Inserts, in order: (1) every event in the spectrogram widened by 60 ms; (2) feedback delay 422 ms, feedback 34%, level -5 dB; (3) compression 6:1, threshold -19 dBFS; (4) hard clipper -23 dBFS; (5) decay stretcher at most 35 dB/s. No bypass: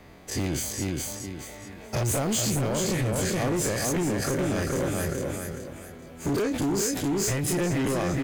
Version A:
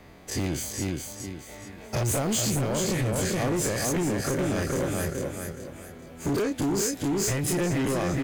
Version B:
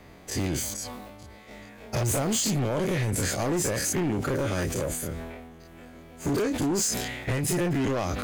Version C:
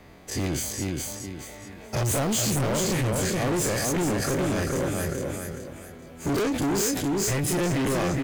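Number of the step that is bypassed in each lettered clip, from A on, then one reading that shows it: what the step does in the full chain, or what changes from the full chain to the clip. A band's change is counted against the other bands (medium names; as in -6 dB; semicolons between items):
5, crest factor change -7.0 dB; 2, momentary loudness spread change +8 LU; 3, mean gain reduction 2.0 dB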